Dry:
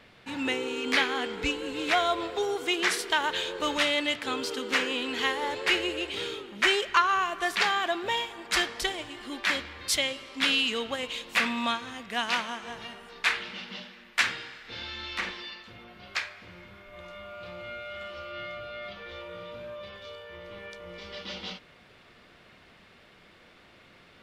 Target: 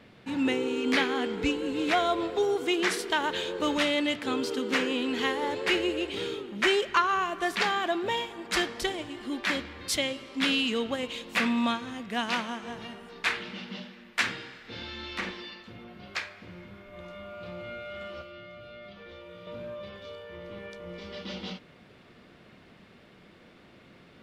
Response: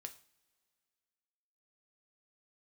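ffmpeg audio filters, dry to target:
-filter_complex "[0:a]equalizer=frequency=210:width=0.46:gain=9.5,asettb=1/sr,asplit=3[link_01][link_02][link_03];[link_01]atrim=end=18.214[link_04];[link_02]atrim=start=18.21:end=19.47,asetpts=PTS-STARTPTS,afade=type=in:duration=0.004:curve=qsin,afade=type=out:start_time=1.256:duration=0.004:curve=qsin,acrossover=split=520|1800[link_05][link_06][link_07];[link_05]acompressor=threshold=-46dB:ratio=4[link_08];[link_06]acompressor=threshold=-49dB:ratio=4[link_09];[link_07]acompressor=threshold=-50dB:ratio=4[link_10];[link_08][link_09][link_10]amix=inputs=3:normalize=0[link_11];[link_03]atrim=start=19.466[link_12];[link_04][link_11]acrossfade=duration=0.004:curve1=hsin:curve2=qsin[link_13];[link_13][link_12]acrossfade=duration=0.004:curve1=qsin:curve2=hsin,volume=-3dB"

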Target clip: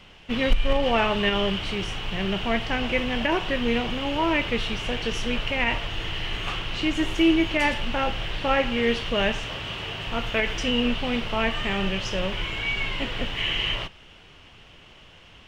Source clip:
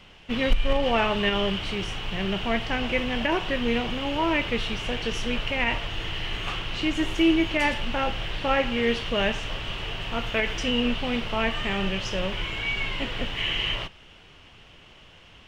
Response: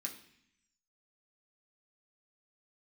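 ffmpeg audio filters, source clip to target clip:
-filter_complex "[0:a]asettb=1/sr,asplit=3[link_01][link_02][link_03];[link_01]atrim=end=9.444[link_04];[link_02]atrim=start=9.44:end=10.07,asetpts=PTS-STARTPTS,afade=type=in:duration=0.004:curve=qsin,afade=type=out:start_time=0.626:duration=0.004:curve=qsin,highpass=63[link_05];[link_03]atrim=start=10.066[link_06];[link_04][link_05]acrossfade=duration=0.004:curve1=hsin:curve2=qsin[link_07];[link_07][link_06]acrossfade=duration=0.004:curve1=qsin:curve2=hsin,volume=1dB"

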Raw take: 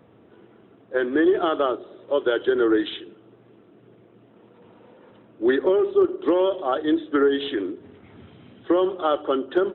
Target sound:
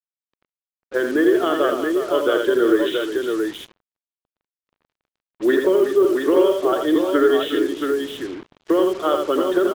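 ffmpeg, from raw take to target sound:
ffmpeg -i in.wav -filter_complex "[0:a]equalizer=frequency=87:width_type=o:width=0.72:gain=-8.5,aecho=1:1:67|84|360|677:0.141|0.531|0.316|0.596,asplit=2[link_01][link_02];[link_02]aeval=exprs='sgn(val(0))*max(abs(val(0))-0.0126,0)':channel_layout=same,volume=-11dB[link_03];[link_01][link_03]amix=inputs=2:normalize=0,equalizer=frequency=810:width_type=o:width=0.24:gain=-8.5,acrusher=bits=5:mix=0:aa=0.5" out.wav

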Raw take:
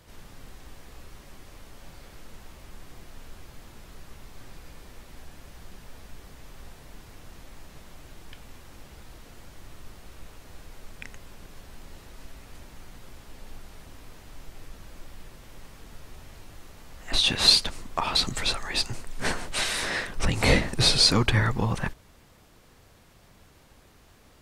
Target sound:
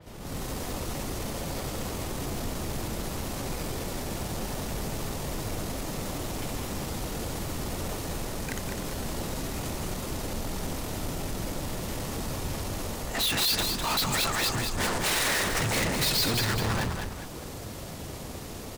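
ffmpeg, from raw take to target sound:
ffmpeg -i in.wav -filter_complex "[0:a]highpass=frequency=100:poles=1,asplit=2[link_01][link_02];[link_02]adynamicsmooth=sensitivity=7:basefreq=800,volume=2dB[link_03];[link_01][link_03]amix=inputs=2:normalize=0,bandreject=frequency=60:width_type=h:width=6,bandreject=frequency=120:width_type=h:width=6,bandreject=frequency=180:width_type=h:width=6,bandreject=frequency=240:width_type=h:width=6,bandreject=frequency=300:width_type=h:width=6,bandreject=frequency=360:width_type=h:width=6,bandreject=frequency=420:width_type=h:width=6,bandreject=frequency=480:width_type=h:width=6,alimiter=limit=-9.5dB:level=0:latency=1:release=245,dynaudnorm=framelen=230:gausssize=3:maxgain=11.5dB,bandreject=frequency=1600:width=23,asoftclip=type=tanh:threshold=-29.5dB,atempo=1.3,asplit=6[link_04][link_05][link_06][link_07][link_08][link_09];[link_05]adelay=203,afreqshift=-33,volume=-5.5dB[link_10];[link_06]adelay=406,afreqshift=-66,volume=-13.2dB[link_11];[link_07]adelay=609,afreqshift=-99,volume=-21dB[link_12];[link_08]adelay=812,afreqshift=-132,volume=-28.7dB[link_13];[link_09]adelay=1015,afreqshift=-165,volume=-36.5dB[link_14];[link_04][link_10][link_11][link_12][link_13][link_14]amix=inputs=6:normalize=0,adynamicequalizer=threshold=0.00158:dfrequency=4500:dqfactor=0.7:tfrequency=4500:tqfactor=0.7:attack=5:release=100:ratio=0.375:range=2.5:mode=boostabove:tftype=highshelf,volume=2.5dB" out.wav

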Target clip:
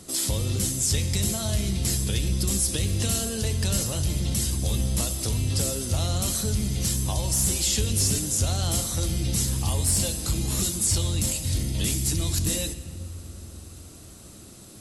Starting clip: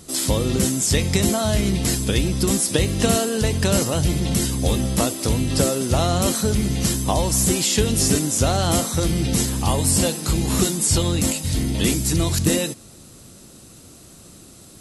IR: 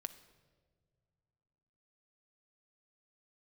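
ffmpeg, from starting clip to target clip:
-filter_complex "[0:a]acrossover=split=130|3000[link_01][link_02][link_03];[link_02]acompressor=threshold=-37dB:ratio=2[link_04];[link_01][link_04][link_03]amix=inputs=3:normalize=0,asoftclip=type=tanh:threshold=-13dB[link_05];[1:a]atrim=start_sample=2205,asetrate=25578,aresample=44100[link_06];[link_05][link_06]afir=irnorm=-1:irlink=0,volume=-1.5dB"

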